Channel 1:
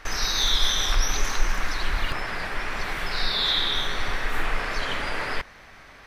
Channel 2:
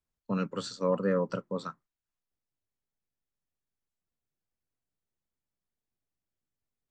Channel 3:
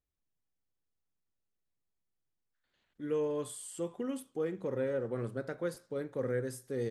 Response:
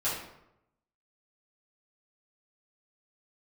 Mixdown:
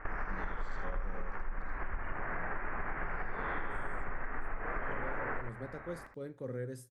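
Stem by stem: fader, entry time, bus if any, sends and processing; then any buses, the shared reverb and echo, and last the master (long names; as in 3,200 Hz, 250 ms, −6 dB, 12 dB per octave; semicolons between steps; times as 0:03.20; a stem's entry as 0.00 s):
0.0 dB, 0.00 s, bus A, no send, echo send −8.5 dB, inverse Chebyshev low-pass filter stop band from 3,600 Hz, stop band 40 dB
−10.0 dB, 0.00 s, bus A, no send, echo send −7 dB, adaptive Wiener filter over 15 samples
0:04.38 −20.5 dB → 0:04.95 −8 dB, 0.25 s, no bus, no send, no echo send, low-shelf EQ 190 Hz +9 dB
bus A: 0.0 dB, downward compressor, threshold −23 dBFS, peak gain reduction 10.5 dB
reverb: not used
echo: single-tap delay 78 ms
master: downward compressor, threshold −32 dBFS, peak gain reduction 13.5 dB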